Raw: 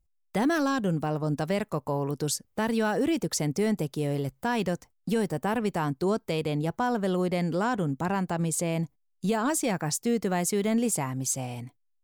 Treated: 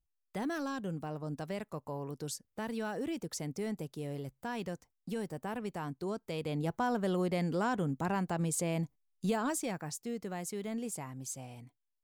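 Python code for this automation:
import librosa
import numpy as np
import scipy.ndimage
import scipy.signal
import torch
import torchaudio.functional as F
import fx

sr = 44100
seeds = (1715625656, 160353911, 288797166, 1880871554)

y = fx.gain(x, sr, db=fx.line((6.2, -11.0), (6.67, -5.0), (9.3, -5.0), (9.98, -12.5)))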